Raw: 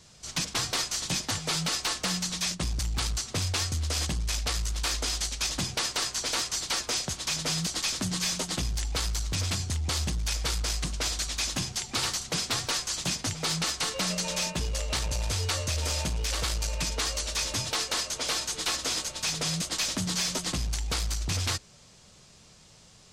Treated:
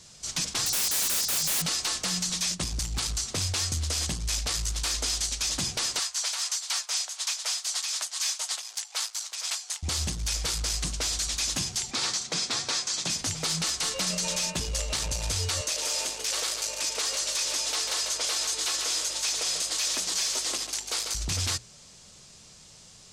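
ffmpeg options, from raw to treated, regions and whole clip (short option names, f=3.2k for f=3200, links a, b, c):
-filter_complex "[0:a]asettb=1/sr,asplit=3[a][b][c];[a]atrim=end=0.664[d];[b]atrim=start=0.66:end=1.62,asetpts=PTS-STARTPTS,afade=t=in:d=0.004:c=qsin,afade=t=out:st=0.956:d=0.004:c=qsin,highshelf=f=3.4k:t=q:w=1.5:g=11.5,acompressor=threshold=-19dB:ratio=8:attack=3.2:release=140:knee=1:detection=peak,aeval=exprs='(mod(13.3*val(0)+1,2)-1)/13.3':c=same[e];[c]atrim=start=1.616[f];[d][e]acrossfade=d=0.004:c1=hsin:c2=qsin[g];[g][f]acrossfade=d=0.004:c1=qsin:c2=hsin,asettb=1/sr,asplit=3[h][i][j];[h]atrim=end=5.994[k];[i]atrim=start=5.99:end=9.83,asetpts=PTS-STARTPTS,afade=t=in:d=0.004:c=qsin,afade=t=out:st=3.836:d=0.004:c=qsin,highpass=f=710:w=0.5412,highpass=f=710:w=1.3066,tremolo=f=4:d=0.63[l];[j]atrim=start=9.826[m];[k][l]acrossfade=d=0.004:c1=hsin:c2=qsin[n];[n][m]acrossfade=d=0.004:c1=qsin:c2=hsin,asettb=1/sr,asplit=3[o][p][q];[o]atrim=end=11.914[r];[p]atrim=start=11.91:end=13.1,asetpts=PTS-STARTPTS,afade=t=in:d=0.004:c=qsin,afade=t=out:st=1.186:d=0.004:c=qsin,highpass=150,lowpass=6.8k,bandreject=f=2.9k:w=15[s];[q]atrim=start=13.096[t];[r][s]acrossfade=d=0.004:c1=hsin:c2=qsin[u];[u][t]acrossfade=d=0.004:c1=qsin:c2=hsin,asettb=1/sr,asplit=3[v][w][x];[v]atrim=end=15.614[y];[w]atrim=start=15.61:end=21.15,asetpts=PTS-STARTPTS,afade=t=in:d=0.004:c=qsin,afade=t=out:st=5.536:d=0.004:c=qsin,highpass=f=340:w=0.5412,highpass=f=340:w=1.3066,aeval=exprs='val(0)+0.00158*(sin(2*PI*50*n/s)+sin(2*PI*2*50*n/s)/2+sin(2*PI*3*50*n/s)/3+sin(2*PI*4*50*n/s)/4+sin(2*PI*5*50*n/s)/5)':c=same,aecho=1:1:144:0.355,atrim=end_sample=244314[z];[x]atrim=start=21.146[aa];[y][z]acrossfade=d=0.004:c1=hsin:c2=qsin[ab];[ab][aa]acrossfade=d=0.004:c1=qsin:c2=hsin,equalizer=f=7.7k:t=o:w=2:g=6.5,bandreject=f=60:t=h:w=6,bandreject=f=120:t=h:w=6,alimiter=limit=-19.5dB:level=0:latency=1:release=26"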